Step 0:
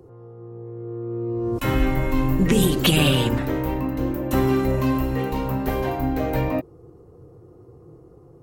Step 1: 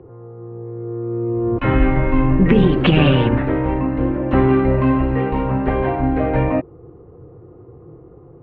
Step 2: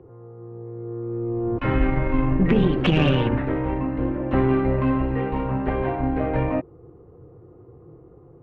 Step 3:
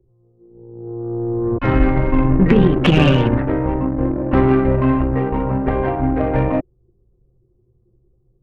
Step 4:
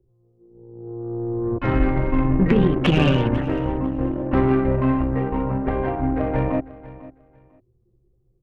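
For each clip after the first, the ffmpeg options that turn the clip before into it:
-af "lowpass=f=2500:w=0.5412,lowpass=f=2500:w=1.3066,volume=1.88"
-af "aeval=exprs='0.891*(cos(1*acos(clip(val(0)/0.891,-1,1)))-cos(1*PI/2))+0.0355*(cos(6*acos(clip(val(0)/0.891,-1,1)))-cos(6*PI/2))':c=same,volume=0.531"
-af "anlmdn=100,aeval=exprs='0.531*(cos(1*acos(clip(val(0)/0.531,-1,1)))-cos(1*PI/2))+0.0335*(cos(8*acos(clip(val(0)/0.531,-1,1)))-cos(8*PI/2))':c=same,volume=2"
-af "aecho=1:1:498|996:0.126|0.0252,volume=0.596"

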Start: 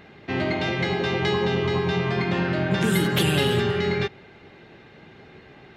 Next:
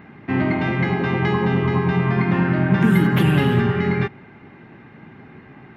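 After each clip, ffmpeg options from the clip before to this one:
-af "equalizer=f=125:t=o:w=1:g=7,equalizer=f=250:t=o:w=1:g=10,equalizer=f=500:t=o:w=1:g=-4,equalizer=f=1000:t=o:w=1:g=7,equalizer=f=2000:t=o:w=1:g=5,equalizer=f=4000:t=o:w=1:g=-8,equalizer=f=8000:t=o:w=1:g=-11,volume=0.841"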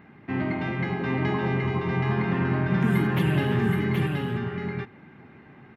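-af "aecho=1:1:774:0.668,volume=0.422"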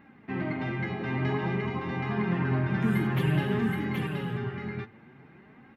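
-af "flanger=delay=3.6:depth=5.6:regen=35:speed=0.52:shape=sinusoidal"

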